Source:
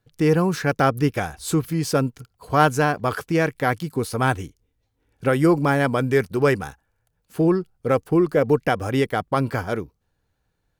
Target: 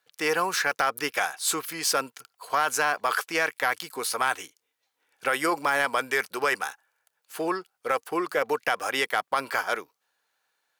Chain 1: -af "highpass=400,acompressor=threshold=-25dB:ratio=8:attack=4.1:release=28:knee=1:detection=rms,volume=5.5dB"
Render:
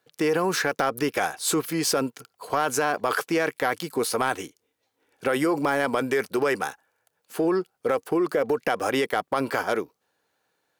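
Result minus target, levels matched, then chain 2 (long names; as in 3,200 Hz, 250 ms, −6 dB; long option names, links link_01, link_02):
500 Hz band +4.0 dB
-af "highpass=940,acompressor=threshold=-25dB:ratio=8:attack=4.1:release=28:knee=1:detection=rms,volume=5.5dB"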